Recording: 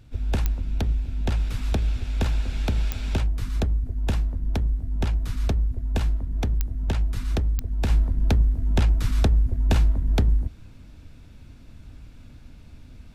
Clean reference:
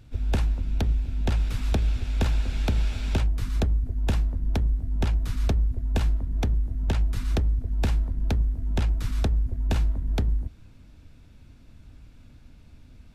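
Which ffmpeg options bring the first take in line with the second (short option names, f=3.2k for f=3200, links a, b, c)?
-af "adeclick=t=4,asetnsamples=n=441:p=0,asendcmd='7.9 volume volume -4.5dB',volume=0dB"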